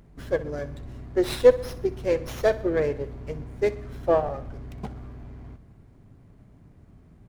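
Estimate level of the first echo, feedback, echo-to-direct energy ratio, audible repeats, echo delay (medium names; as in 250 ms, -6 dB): -17.0 dB, 56%, -15.5 dB, 4, 63 ms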